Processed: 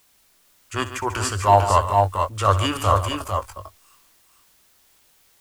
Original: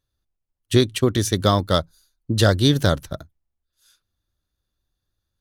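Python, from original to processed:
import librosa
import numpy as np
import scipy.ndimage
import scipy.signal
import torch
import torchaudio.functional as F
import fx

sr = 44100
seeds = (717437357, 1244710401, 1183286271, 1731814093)

p1 = fx.curve_eq(x, sr, hz=(100.0, 140.0, 1100.0, 4800.0, 8800.0), db=(0, -27, 14, -8, 3))
p2 = fx.formant_shift(p1, sr, semitones=-4)
p3 = fx.quant_dither(p2, sr, seeds[0], bits=10, dither='triangular')
p4 = fx.transient(p3, sr, attack_db=-8, sustain_db=3)
y = p4 + fx.echo_multitap(p4, sr, ms=(64, 142, 450, 470), db=(-15.0, -12.0, -5.5, -12.5), dry=0)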